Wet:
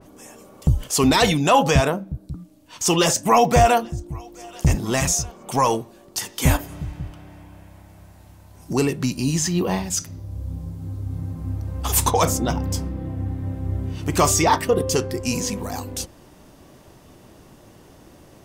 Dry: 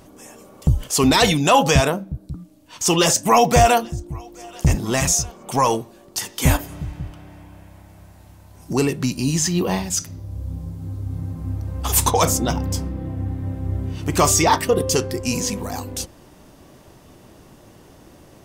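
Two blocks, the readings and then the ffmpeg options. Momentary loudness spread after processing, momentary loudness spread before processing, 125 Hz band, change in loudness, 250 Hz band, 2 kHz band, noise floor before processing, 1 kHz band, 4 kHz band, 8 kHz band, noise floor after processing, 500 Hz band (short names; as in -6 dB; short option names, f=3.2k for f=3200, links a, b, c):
16 LU, 17 LU, -1.0 dB, -1.5 dB, -1.0 dB, -2.0 dB, -48 dBFS, -1.0 dB, -2.5 dB, -2.5 dB, -49 dBFS, -1.0 dB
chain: -af "adynamicequalizer=threshold=0.0224:dfrequency=2600:dqfactor=0.7:tfrequency=2600:tqfactor=0.7:attack=5:release=100:ratio=0.375:range=2.5:mode=cutabove:tftype=highshelf,volume=-1dB"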